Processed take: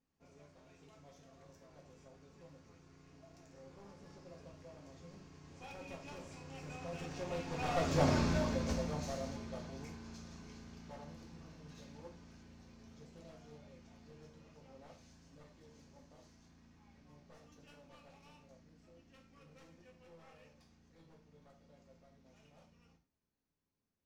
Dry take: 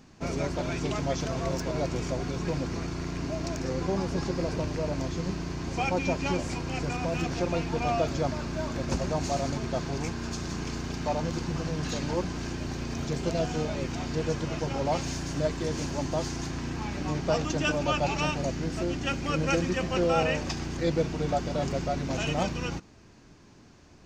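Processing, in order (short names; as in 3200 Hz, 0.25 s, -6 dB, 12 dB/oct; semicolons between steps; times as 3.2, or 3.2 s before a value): one-sided fold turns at -25 dBFS; Doppler pass-by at 8.16, 10 m/s, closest 1.9 m; non-linear reverb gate 0.14 s falling, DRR 0 dB; gain -1 dB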